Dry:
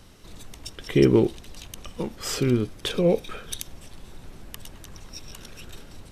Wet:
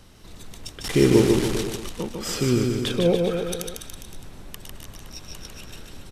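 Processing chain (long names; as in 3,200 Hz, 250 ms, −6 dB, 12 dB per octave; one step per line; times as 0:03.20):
0:00.84–0:01.61: linear delta modulator 64 kbit/s, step −23.5 dBFS
bouncing-ball delay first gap 150 ms, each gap 0.9×, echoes 5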